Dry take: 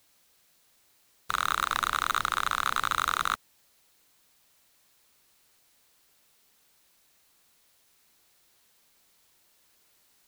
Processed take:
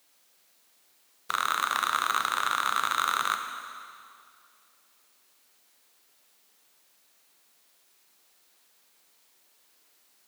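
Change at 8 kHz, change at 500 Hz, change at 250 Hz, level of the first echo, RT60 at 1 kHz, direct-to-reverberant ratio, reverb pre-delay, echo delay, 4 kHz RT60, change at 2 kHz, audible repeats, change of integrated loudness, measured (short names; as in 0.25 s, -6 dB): +1.0 dB, +1.0 dB, -1.5 dB, none, 2.3 s, 5.5 dB, 7 ms, none, 2.1 s, +1.0 dB, none, +0.5 dB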